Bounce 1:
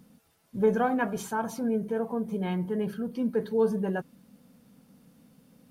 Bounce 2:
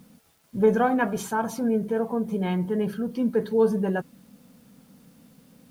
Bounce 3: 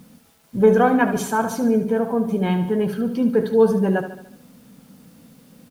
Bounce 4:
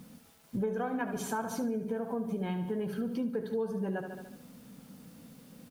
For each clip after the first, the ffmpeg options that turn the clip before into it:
ffmpeg -i in.wav -af "acrusher=bits=10:mix=0:aa=0.000001,volume=4dB" out.wav
ffmpeg -i in.wav -af "aecho=1:1:73|146|219|292|365|438:0.299|0.152|0.0776|0.0396|0.0202|0.0103,volume=5dB" out.wav
ffmpeg -i in.wav -af "acompressor=threshold=-27dB:ratio=6,volume=-4dB" out.wav

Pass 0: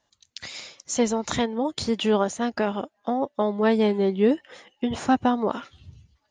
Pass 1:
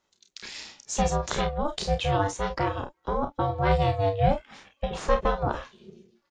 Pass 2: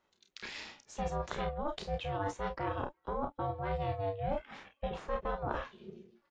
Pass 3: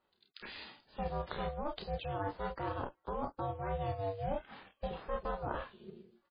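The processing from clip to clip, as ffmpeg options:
ffmpeg -i in.wav -filter_complex "[0:a]aeval=exprs='val(0)*sin(2*PI*290*n/s)':channel_layout=same,asplit=2[link_01][link_02];[link_02]aecho=0:1:31|48:0.447|0.251[link_03];[link_01][link_03]amix=inputs=2:normalize=0" out.wav
ffmpeg -i in.wav -af "bass=frequency=250:gain=-2,treble=frequency=4000:gain=-13,areverse,acompressor=threshold=-32dB:ratio=6,areverse" out.wav
ffmpeg -i in.wav -af "equalizer=frequency=2200:width_type=o:width=0.44:gain=-5,aresample=16000,acrusher=bits=6:mode=log:mix=0:aa=0.000001,aresample=44100,volume=-1.5dB" -ar 11025 -c:a libmp3lame -b:a 16k out.mp3

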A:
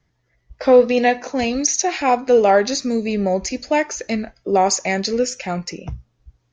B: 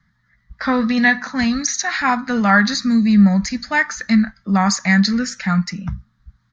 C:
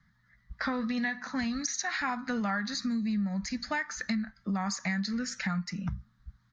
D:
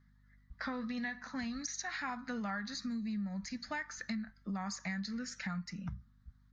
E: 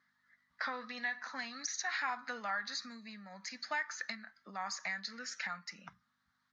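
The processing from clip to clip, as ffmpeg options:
ffmpeg -i in.wav -af "firequalizer=gain_entry='entry(130,0);entry(200,11);entry(360,-22);entry(1200,8);entry(1800,9);entry(2600,-9);entry(3900,4);entry(5700,-5)':delay=0.05:min_phase=1,volume=2.5dB" out.wav
ffmpeg -i in.wav -af "acompressor=threshold=-25dB:ratio=6,volume=-4.5dB" out.wav
ffmpeg -i in.wav -af "aeval=exprs='val(0)+0.00141*(sin(2*PI*50*n/s)+sin(2*PI*2*50*n/s)/2+sin(2*PI*3*50*n/s)/3+sin(2*PI*4*50*n/s)/4+sin(2*PI*5*50*n/s)/5)':channel_layout=same,volume=-7.5dB" out.wav
ffmpeg -i in.wav -af "highpass=630,lowpass=6500,volume=4dB" out.wav

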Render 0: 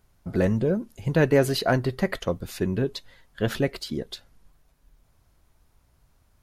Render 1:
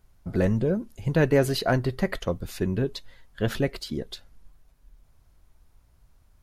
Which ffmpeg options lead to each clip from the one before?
ffmpeg -i in.wav -af "lowshelf=frequency=61:gain=9,volume=-1.5dB" out.wav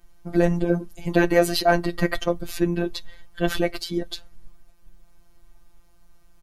ffmpeg -i in.wav -af "aecho=1:1:3.2:0.67,afftfilt=real='hypot(re,im)*cos(PI*b)':imag='0':win_size=1024:overlap=0.75,volume=7dB" out.wav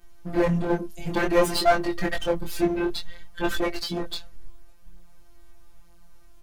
ffmpeg -i in.wav -af "aeval=exprs='clip(val(0),-1,0.0596)':channel_layout=same,flanger=delay=20:depth=6.1:speed=0.55,volume=5.5dB" out.wav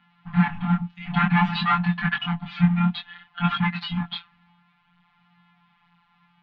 ffmpeg -i in.wav -af "highpass=frequency=300:width_type=q:width=0.5412,highpass=frequency=300:width_type=q:width=1.307,lowpass=frequency=3500:width_type=q:width=0.5176,lowpass=frequency=3500:width_type=q:width=0.7071,lowpass=frequency=3500:width_type=q:width=1.932,afreqshift=-170,afftfilt=real='re*(1-between(b*sr/4096,270,700))':imag='im*(1-between(b*sr/4096,270,700))':win_size=4096:overlap=0.75,volume=6.5dB" out.wav

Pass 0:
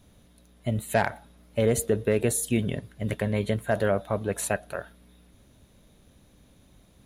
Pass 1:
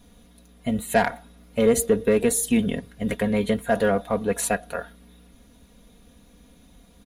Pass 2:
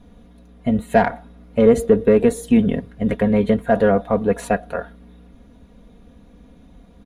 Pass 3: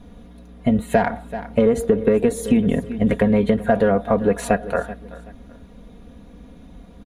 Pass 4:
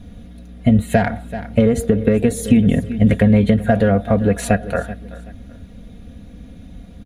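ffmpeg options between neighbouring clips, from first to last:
ffmpeg -i in.wav -filter_complex "[0:a]aecho=1:1:4.2:0.72,asplit=2[link_01][link_02];[link_02]volume=19.5dB,asoftclip=hard,volume=-19.5dB,volume=-9dB[link_03];[link_01][link_03]amix=inputs=2:normalize=0" out.wav
ffmpeg -i in.wav -af "lowpass=frequency=1100:poles=1,volume=6.5dB" out.wav
ffmpeg -i in.wav -af "aecho=1:1:381|762:0.112|0.0314,acompressor=threshold=-17dB:ratio=6,volume=4dB" out.wav
ffmpeg -i in.wav -af "equalizer=frequency=100:width_type=o:width=0.67:gain=8,equalizer=frequency=400:width_type=o:width=0.67:gain=-6,equalizer=frequency=1000:width_type=o:width=0.67:gain=-11,volume=4.5dB" out.wav

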